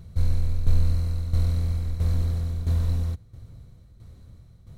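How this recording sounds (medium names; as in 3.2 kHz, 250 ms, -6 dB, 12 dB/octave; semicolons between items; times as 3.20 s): tremolo saw down 1.5 Hz, depth 70%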